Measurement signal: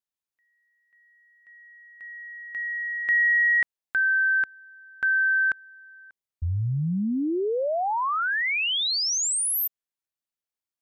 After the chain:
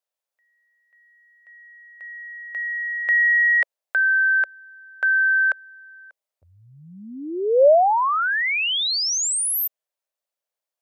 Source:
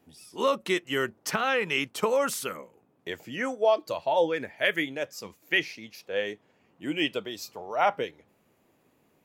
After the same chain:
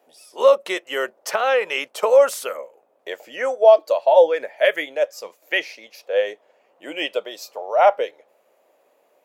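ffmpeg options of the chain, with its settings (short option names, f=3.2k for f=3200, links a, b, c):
-af "highpass=f=570:t=q:w=3.7,volume=2.5dB"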